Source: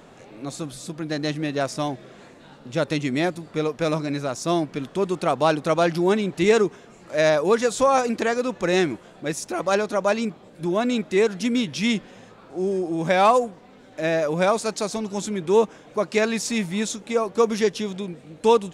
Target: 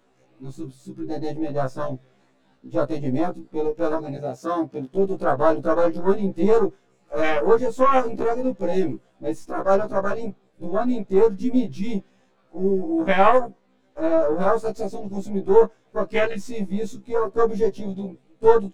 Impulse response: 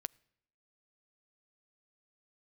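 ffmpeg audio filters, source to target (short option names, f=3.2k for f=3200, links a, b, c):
-filter_complex "[0:a]aeval=exprs='if(lt(val(0),0),0.447*val(0),val(0))':c=same,asettb=1/sr,asplit=3[a][b][c];[a]atrim=end=4.174[d];[b]atrim=start=4.17:end=4.97,asetpts=PTS-STARTPTS,afade=t=in:d=0.004:c=qsin,afade=t=out:st=0.796:d=0.004:c=qsin,highpass=f=170:p=1[e];[c]atrim=start=4.966[f];[d][e]acrossfade=d=0.004:c1=hsin:c2=qsin[g];[g][f]acrossfade=d=0.004:c1=qsin:c2=hsin,afwtdn=0.0501,asplit=2[h][i];[1:a]atrim=start_sample=2205,atrim=end_sample=4410[j];[i][j]afir=irnorm=-1:irlink=0,volume=7.5dB[k];[h][k]amix=inputs=2:normalize=0,afftfilt=real='re*1.73*eq(mod(b,3),0)':imag='im*1.73*eq(mod(b,3),0)':win_size=2048:overlap=0.75,volume=-3dB"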